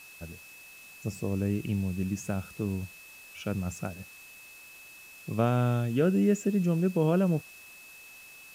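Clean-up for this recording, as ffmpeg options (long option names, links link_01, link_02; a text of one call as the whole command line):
ffmpeg -i in.wav -af "adeclick=threshold=4,bandreject=frequency=2600:width=30,afwtdn=0.0022" out.wav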